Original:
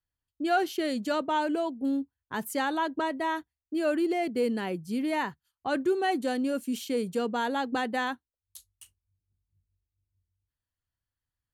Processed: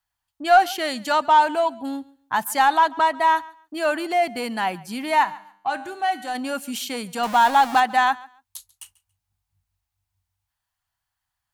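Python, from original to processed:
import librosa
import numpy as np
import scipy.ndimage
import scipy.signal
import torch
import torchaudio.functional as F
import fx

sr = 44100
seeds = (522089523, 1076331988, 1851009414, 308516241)

p1 = fx.zero_step(x, sr, step_db=-33.5, at=(7.23, 7.8))
p2 = fx.low_shelf_res(p1, sr, hz=600.0, db=-9.0, q=3.0)
p3 = 10.0 ** (-27.5 / 20.0) * np.tanh(p2 / 10.0 ** (-27.5 / 20.0))
p4 = p2 + (p3 * 10.0 ** (-8.0 / 20.0))
p5 = fx.comb_fb(p4, sr, f0_hz=100.0, decay_s=0.65, harmonics='all', damping=0.0, mix_pct=60, at=(5.23, 6.34), fade=0.02)
p6 = p5 + fx.echo_feedback(p5, sr, ms=140, feedback_pct=20, wet_db=-22.0, dry=0)
y = p6 * 10.0 ** (7.0 / 20.0)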